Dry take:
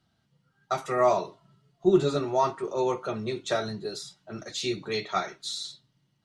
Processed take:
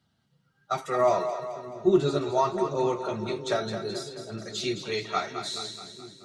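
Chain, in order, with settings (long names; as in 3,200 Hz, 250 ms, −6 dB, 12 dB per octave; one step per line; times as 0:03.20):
spectral magnitudes quantised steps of 15 dB
echo with a time of its own for lows and highs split 400 Hz, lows 673 ms, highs 214 ms, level −8.5 dB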